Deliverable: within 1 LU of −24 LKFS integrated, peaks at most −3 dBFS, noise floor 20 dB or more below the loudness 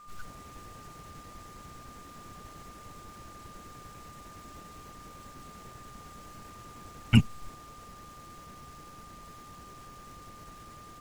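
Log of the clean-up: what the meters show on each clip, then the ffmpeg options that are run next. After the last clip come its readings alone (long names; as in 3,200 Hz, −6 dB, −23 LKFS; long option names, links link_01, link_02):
interfering tone 1,200 Hz; level of the tone −49 dBFS; integrated loudness −39.0 LKFS; sample peak −7.0 dBFS; target loudness −24.0 LKFS
→ -af "bandreject=frequency=1200:width=30"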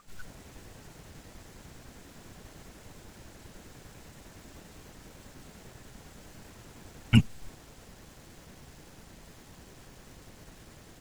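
interfering tone none found; integrated loudness −26.0 LKFS; sample peak −6.5 dBFS; target loudness −24.0 LKFS
→ -af "volume=2dB"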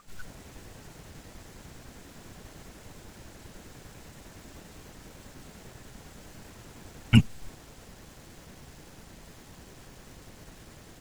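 integrated loudness −24.0 LKFS; sample peak −4.5 dBFS; background noise floor −51 dBFS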